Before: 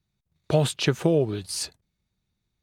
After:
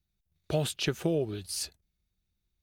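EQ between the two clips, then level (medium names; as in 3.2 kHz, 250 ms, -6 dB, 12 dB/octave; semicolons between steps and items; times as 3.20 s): graphic EQ 125/250/500/1000/2000/4000/8000 Hz -11/-7/-7/-11/-6/-5/-7 dB; +3.0 dB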